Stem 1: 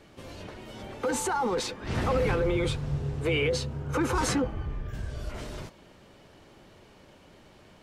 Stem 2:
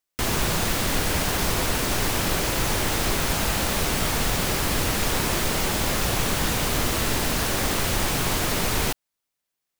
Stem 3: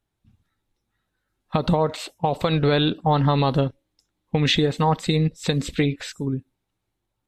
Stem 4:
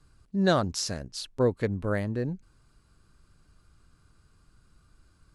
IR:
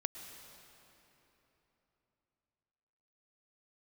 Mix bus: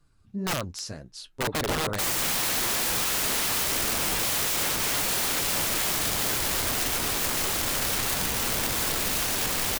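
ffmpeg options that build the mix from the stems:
-filter_complex "[0:a]acrusher=bits=4:mix=0:aa=0.000001,asplit=2[a][b];[b]afreqshift=0.72[c];[a][c]amix=inputs=2:normalize=1,adelay=950,volume=2dB[d];[1:a]alimiter=limit=-15dB:level=0:latency=1:release=153,adelay=1800,volume=0dB[e];[2:a]volume=-2dB[f];[3:a]flanger=delay=5.7:depth=6:regen=45:speed=1.9:shape=sinusoidal,volume=-0.5dB,asplit=2[g][h];[h]apad=whole_len=320989[i];[f][i]sidechaincompress=threshold=-33dB:ratio=5:attack=16:release=137[j];[d][e][j][g]amix=inputs=4:normalize=0,aeval=exprs='(mod(11.9*val(0)+1,2)-1)/11.9':c=same"

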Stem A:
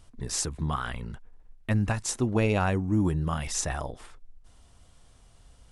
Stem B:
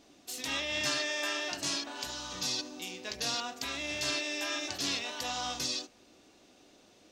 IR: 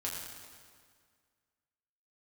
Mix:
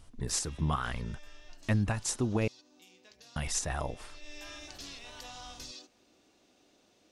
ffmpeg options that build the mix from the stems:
-filter_complex "[0:a]alimiter=limit=-18.5dB:level=0:latency=1:release=239,volume=-0.5dB,asplit=3[a][b][c];[a]atrim=end=2.48,asetpts=PTS-STARTPTS,afade=t=out:st=2.476:d=0.004:c=hsin[d];[b]atrim=start=2.48:end=3.36,asetpts=PTS-STARTPTS,volume=0[e];[c]atrim=start=3.36,asetpts=PTS-STARTPTS,afade=t=in:d=0.004:c=hsin[f];[d][e][f]concat=n=3:v=0:a=1[g];[1:a]acompressor=threshold=-37dB:ratio=6,volume=-6dB,afade=t=in:st=4.1:d=0.34:silence=0.298538[h];[g][h]amix=inputs=2:normalize=0"

